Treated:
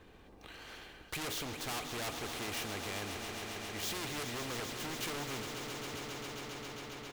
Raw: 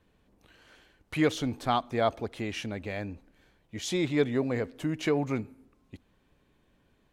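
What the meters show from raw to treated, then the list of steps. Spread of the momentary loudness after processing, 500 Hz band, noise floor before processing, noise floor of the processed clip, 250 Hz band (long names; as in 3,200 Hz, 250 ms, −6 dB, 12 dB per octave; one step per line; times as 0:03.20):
11 LU, −12.5 dB, −69 dBFS, −57 dBFS, −13.5 dB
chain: running median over 5 samples
comb filter 2.5 ms, depth 36%
flanger 0.32 Hz, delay 2.9 ms, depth 3.7 ms, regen −83%
hard clipping −36 dBFS, distortion −4 dB
on a send: echo that builds up and dies away 135 ms, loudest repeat 5, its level −14 dB
on the sum: every bin compressed towards the loudest bin 2 to 1
level +5.5 dB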